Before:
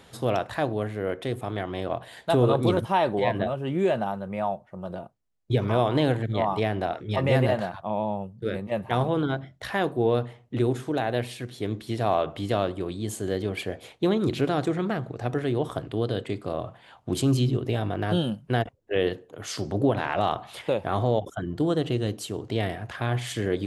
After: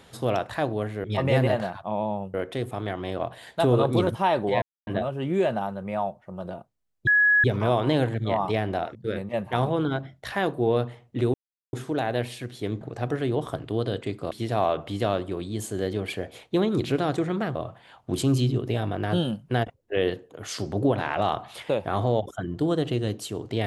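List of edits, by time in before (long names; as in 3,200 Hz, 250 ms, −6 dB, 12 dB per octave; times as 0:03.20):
0:03.32: splice in silence 0.25 s
0:05.52: insert tone 1,680 Hz −15.5 dBFS 0.37 s
0:07.03–0:08.33: move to 0:01.04
0:10.72: splice in silence 0.39 s
0:15.04–0:16.54: move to 0:11.80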